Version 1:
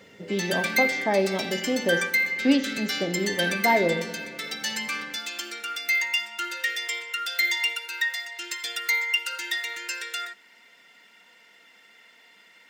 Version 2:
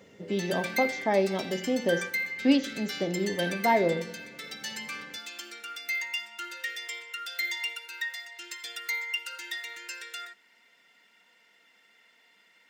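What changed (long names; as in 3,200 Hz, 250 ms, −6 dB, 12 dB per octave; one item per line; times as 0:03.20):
speech: send −10.5 dB
background −7.5 dB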